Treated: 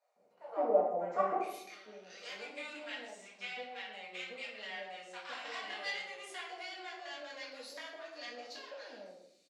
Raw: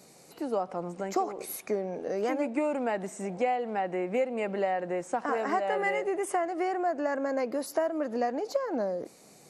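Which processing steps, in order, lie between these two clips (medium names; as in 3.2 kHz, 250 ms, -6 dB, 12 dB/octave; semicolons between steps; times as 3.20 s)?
power-law waveshaper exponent 1.4; band-pass sweep 630 Hz -> 3.9 kHz, 1.04–1.59 s; bands offset in time highs, lows 160 ms, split 790 Hz; reverberation RT60 0.70 s, pre-delay 4 ms, DRR -6 dB; trim +2.5 dB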